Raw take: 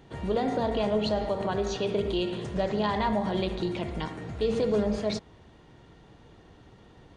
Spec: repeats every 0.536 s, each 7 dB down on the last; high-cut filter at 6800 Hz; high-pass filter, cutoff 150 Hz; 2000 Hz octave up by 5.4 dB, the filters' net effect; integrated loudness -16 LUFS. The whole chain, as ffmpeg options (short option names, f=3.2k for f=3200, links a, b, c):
-af "highpass=150,lowpass=6.8k,equalizer=f=2k:t=o:g=6.5,aecho=1:1:536|1072|1608|2144|2680:0.447|0.201|0.0905|0.0407|0.0183,volume=12dB"